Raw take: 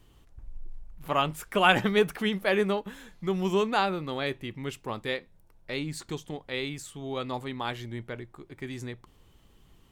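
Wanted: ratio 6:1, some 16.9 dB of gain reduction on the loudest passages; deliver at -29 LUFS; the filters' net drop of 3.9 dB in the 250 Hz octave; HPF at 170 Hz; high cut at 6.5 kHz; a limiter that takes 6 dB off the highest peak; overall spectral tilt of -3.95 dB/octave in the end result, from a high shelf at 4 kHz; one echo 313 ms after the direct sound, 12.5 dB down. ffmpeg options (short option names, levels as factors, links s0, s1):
-af "highpass=170,lowpass=6500,equalizer=f=250:t=o:g=-3.5,highshelf=f=4000:g=6,acompressor=threshold=0.02:ratio=6,alimiter=level_in=1.41:limit=0.0631:level=0:latency=1,volume=0.708,aecho=1:1:313:0.237,volume=3.76"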